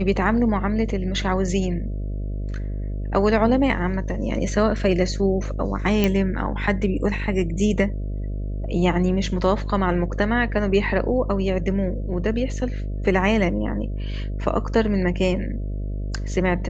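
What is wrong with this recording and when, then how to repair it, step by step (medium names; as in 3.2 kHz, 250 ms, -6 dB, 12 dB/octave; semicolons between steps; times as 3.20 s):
buzz 50 Hz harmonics 13 -27 dBFS
6.04 s: pop -7 dBFS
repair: de-click; de-hum 50 Hz, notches 13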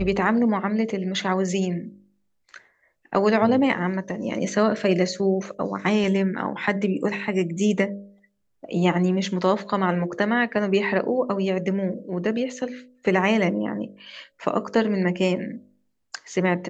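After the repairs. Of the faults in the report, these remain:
nothing left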